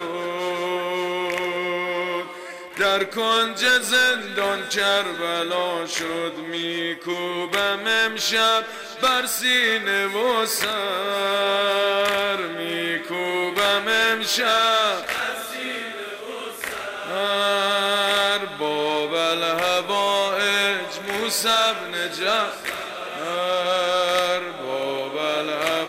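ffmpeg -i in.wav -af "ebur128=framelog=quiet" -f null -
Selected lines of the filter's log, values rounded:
Integrated loudness:
  I:         -21.5 LUFS
  Threshold: -31.6 LUFS
Loudness range:
  LRA:         3.4 LU
  Threshold: -41.4 LUFS
  LRA low:   -23.5 LUFS
  LRA high:  -20.1 LUFS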